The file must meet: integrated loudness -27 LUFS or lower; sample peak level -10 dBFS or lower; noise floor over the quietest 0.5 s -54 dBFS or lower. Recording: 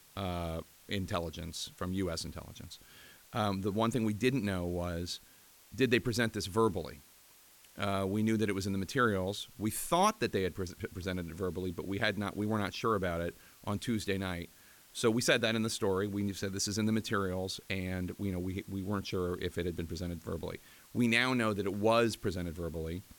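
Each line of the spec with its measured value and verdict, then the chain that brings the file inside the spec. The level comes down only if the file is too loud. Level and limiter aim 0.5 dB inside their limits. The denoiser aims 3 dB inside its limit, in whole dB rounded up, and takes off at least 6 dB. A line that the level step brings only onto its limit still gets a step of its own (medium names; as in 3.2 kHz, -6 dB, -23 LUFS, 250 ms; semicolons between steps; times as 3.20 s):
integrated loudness -34.0 LUFS: pass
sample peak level -13.0 dBFS: pass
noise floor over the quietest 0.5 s -60 dBFS: pass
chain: none needed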